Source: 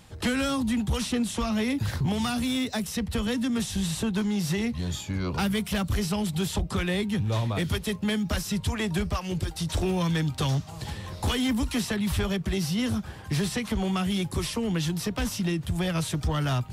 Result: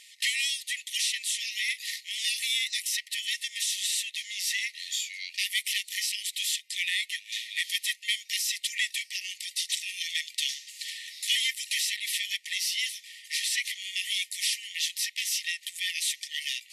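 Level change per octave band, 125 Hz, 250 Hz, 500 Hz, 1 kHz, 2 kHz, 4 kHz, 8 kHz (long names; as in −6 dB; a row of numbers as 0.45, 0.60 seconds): below −40 dB, below −40 dB, below −40 dB, below −40 dB, +4.0 dB, +6.5 dB, +6.5 dB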